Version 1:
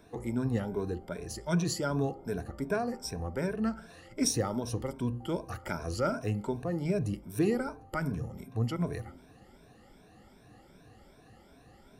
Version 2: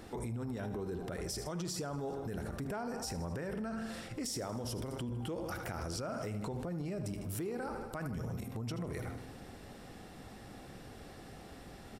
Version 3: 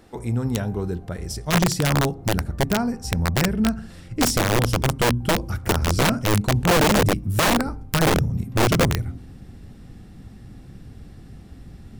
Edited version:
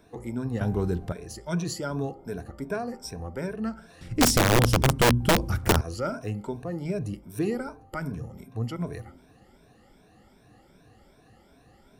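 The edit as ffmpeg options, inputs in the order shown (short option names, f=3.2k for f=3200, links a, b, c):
-filter_complex "[2:a]asplit=2[a][b];[0:a]asplit=3[c][d][e];[c]atrim=end=0.612[f];[a]atrim=start=0.608:end=1.122[g];[d]atrim=start=1.118:end=4.012[h];[b]atrim=start=4.008:end=5.812[i];[e]atrim=start=5.808[j];[f][g]acrossfade=d=0.004:c1=hsin:c2=hsin[k];[k][h]acrossfade=d=0.004:c1=hsin:c2=hsin[l];[l][i]acrossfade=d=0.004:c1=hsin:c2=hsin[m];[m][j]acrossfade=d=0.004:c1=hsin:c2=hsin"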